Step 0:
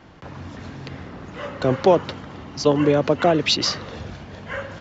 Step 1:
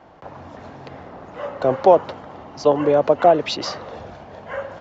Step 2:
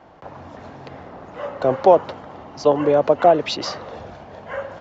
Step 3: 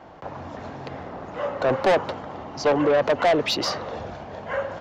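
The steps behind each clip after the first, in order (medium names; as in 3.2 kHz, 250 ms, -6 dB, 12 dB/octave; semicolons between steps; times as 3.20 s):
peaking EQ 710 Hz +14.5 dB 1.7 oct; trim -8 dB
no audible change
saturation -17.5 dBFS, distortion -6 dB; trim +2.5 dB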